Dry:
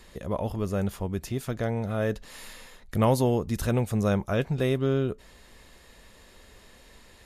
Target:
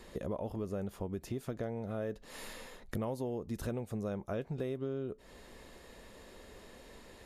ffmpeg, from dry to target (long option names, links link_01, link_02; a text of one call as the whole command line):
ffmpeg -i in.wav -af "equalizer=frequency=400:width_type=o:width=2.6:gain=8,acompressor=threshold=-31dB:ratio=6,volume=-4dB" out.wav